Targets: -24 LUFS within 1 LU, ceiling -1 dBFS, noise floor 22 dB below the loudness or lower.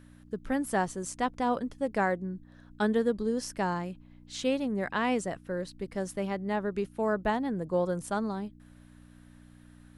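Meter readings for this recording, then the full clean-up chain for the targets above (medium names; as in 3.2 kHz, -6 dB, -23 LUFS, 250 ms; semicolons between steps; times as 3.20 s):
hum 60 Hz; highest harmonic 300 Hz; hum level -54 dBFS; loudness -31.5 LUFS; peak level -15.0 dBFS; loudness target -24.0 LUFS
-> de-hum 60 Hz, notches 5; trim +7.5 dB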